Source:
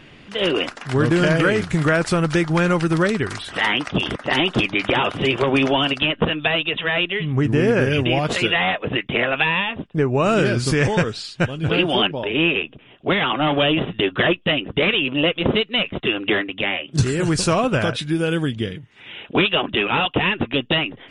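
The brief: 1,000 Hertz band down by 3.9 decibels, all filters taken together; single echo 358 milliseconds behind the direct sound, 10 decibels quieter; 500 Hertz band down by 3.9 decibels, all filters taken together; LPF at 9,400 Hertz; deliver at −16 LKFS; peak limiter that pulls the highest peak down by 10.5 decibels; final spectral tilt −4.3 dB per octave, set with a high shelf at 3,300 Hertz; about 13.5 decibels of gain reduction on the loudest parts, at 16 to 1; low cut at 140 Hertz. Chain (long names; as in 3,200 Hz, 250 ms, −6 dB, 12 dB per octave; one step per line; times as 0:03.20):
high-pass filter 140 Hz
low-pass filter 9,400 Hz
parametric band 500 Hz −4 dB
parametric band 1,000 Hz −4.5 dB
high-shelf EQ 3,300 Hz +4 dB
downward compressor 16 to 1, threshold −28 dBFS
brickwall limiter −23 dBFS
single-tap delay 358 ms −10 dB
level +17 dB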